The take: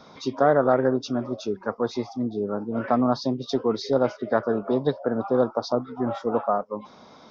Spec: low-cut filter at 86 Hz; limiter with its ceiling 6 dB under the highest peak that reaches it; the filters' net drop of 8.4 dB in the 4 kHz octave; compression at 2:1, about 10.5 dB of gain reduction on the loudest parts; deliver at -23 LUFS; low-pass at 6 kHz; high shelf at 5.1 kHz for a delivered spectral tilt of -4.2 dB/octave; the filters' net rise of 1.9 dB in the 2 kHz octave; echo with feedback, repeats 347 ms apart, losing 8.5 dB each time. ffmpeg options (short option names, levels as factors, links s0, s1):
-af "highpass=86,lowpass=6000,equalizer=f=2000:t=o:g=5,equalizer=f=4000:t=o:g=-6,highshelf=f=5100:g=-8,acompressor=threshold=0.0178:ratio=2,alimiter=limit=0.0708:level=0:latency=1,aecho=1:1:347|694|1041|1388:0.376|0.143|0.0543|0.0206,volume=3.98"